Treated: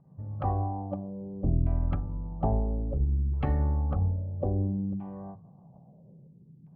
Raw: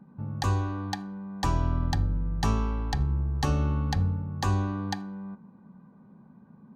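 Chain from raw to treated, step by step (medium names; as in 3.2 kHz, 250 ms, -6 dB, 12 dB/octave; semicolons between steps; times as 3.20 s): LFO low-pass saw down 0.6 Hz 320–3100 Hz; formant shift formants -6 st; tilt shelf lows +8 dB, about 1.4 kHz; hum notches 50/100/150 Hz; endings held to a fixed fall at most 120 dB/s; trim -7.5 dB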